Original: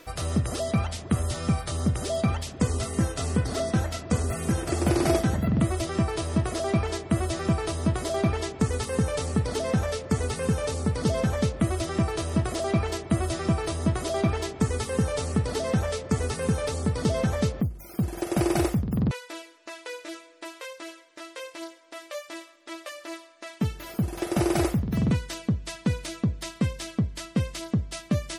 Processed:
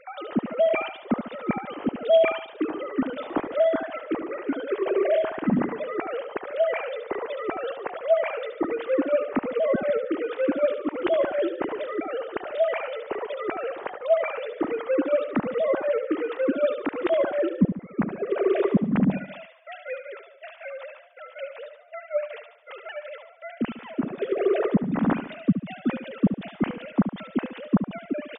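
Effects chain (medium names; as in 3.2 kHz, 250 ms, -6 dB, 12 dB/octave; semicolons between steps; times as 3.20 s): formants replaced by sine waves; feedback delay 72 ms, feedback 42%, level -9.5 dB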